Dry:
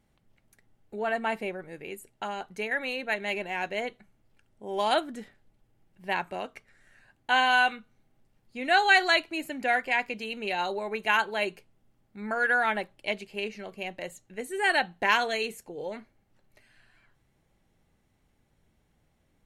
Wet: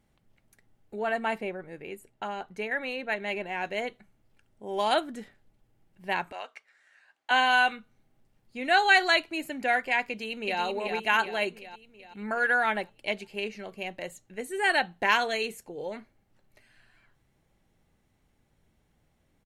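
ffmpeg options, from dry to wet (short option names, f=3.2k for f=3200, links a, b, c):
-filter_complex "[0:a]asettb=1/sr,asplit=3[a][b][c];[a]atrim=end=1.384[d];[b]atrim=start=1.38:end=3.65,asetpts=PTS-STARTPTS,afade=t=in:d=0.004:c=qsin,afade=t=out:st=2.266:d=0.004:c=qsin,highshelf=f=4k:g=-7.5[e];[c]atrim=start=3.646[f];[d][e]acrossfade=d=0.004:c1=hsin:c2=qsin[g];[g][f]acrossfade=d=0.004:c1=qsin:c2=hsin,asettb=1/sr,asplit=3[h][i][j];[h]atrim=end=6.324[k];[i]atrim=start=6.32:end=7.31,asetpts=PTS-STARTPTS,afade=t=in:d=0.004:c=qsin,afade=t=out:st=0.986:d=0.004:c=qsin,highpass=790,lowpass=7.3k[l];[j]atrim=start=7.306[m];[k][l]acrossfade=d=0.004:c1=hsin:c2=qsin[n];[n][m]acrossfade=d=0.004:c1=qsin:c2=hsin,asplit=2[o][p];[p]afade=t=in:st=10.08:d=0.01,afade=t=out:st=10.61:d=0.01,aecho=0:1:380|760|1140|1520|1900|2280|2660:0.562341|0.309288|0.170108|0.0935595|0.0514577|0.0283018|0.015566[q];[o][q]amix=inputs=2:normalize=0"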